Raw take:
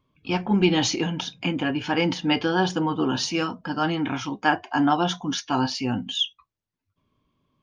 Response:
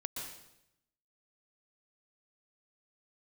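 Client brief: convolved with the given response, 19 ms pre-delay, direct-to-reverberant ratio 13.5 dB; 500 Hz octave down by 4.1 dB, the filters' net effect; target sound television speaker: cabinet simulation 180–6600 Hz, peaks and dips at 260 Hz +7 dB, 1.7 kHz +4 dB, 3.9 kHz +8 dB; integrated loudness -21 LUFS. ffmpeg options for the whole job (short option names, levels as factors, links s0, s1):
-filter_complex "[0:a]equalizer=f=500:t=o:g=-7.5,asplit=2[s0][s1];[1:a]atrim=start_sample=2205,adelay=19[s2];[s1][s2]afir=irnorm=-1:irlink=0,volume=0.211[s3];[s0][s3]amix=inputs=2:normalize=0,highpass=f=180:w=0.5412,highpass=f=180:w=1.3066,equalizer=f=260:t=q:w=4:g=7,equalizer=f=1700:t=q:w=4:g=4,equalizer=f=3900:t=q:w=4:g=8,lowpass=f=6600:w=0.5412,lowpass=f=6600:w=1.3066,volume=1.33"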